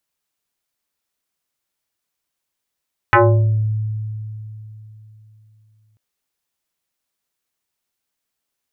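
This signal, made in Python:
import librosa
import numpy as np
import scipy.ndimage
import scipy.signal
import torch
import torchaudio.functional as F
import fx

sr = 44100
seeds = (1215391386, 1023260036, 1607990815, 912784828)

y = fx.fm2(sr, length_s=2.84, level_db=-7, carrier_hz=108.0, ratio=4.32, index=4.4, index_s=0.62, decay_s=3.46, shape='exponential')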